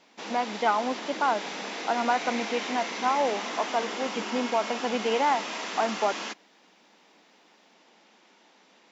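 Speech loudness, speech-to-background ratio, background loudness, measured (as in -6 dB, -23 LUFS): -29.0 LUFS, 5.0 dB, -34.0 LUFS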